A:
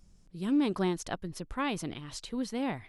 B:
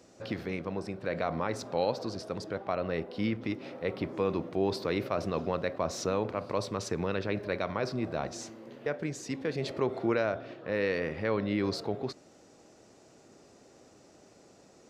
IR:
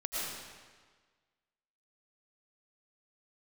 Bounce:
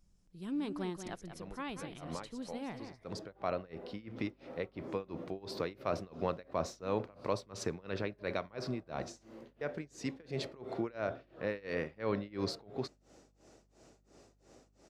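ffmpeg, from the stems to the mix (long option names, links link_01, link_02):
-filter_complex "[0:a]volume=-9.5dB,asplit=3[link_01][link_02][link_03];[link_02]volume=-9dB[link_04];[1:a]tremolo=f=2.9:d=0.96,aeval=exprs='val(0)+0.000398*(sin(2*PI*50*n/s)+sin(2*PI*2*50*n/s)/2+sin(2*PI*3*50*n/s)/3+sin(2*PI*4*50*n/s)/4+sin(2*PI*5*50*n/s)/5)':channel_layout=same,adelay=750,volume=-2dB[link_05];[link_03]apad=whole_len=689964[link_06];[link_05][link_06]sidechaincompress=threshold=-52dB:ratio=6:attack=6.4:release=371[link_07];[link_04]aecho=0:1:187:1[link_08];[link_01][link_07][link_08]amix=inputs=3:normalize=0"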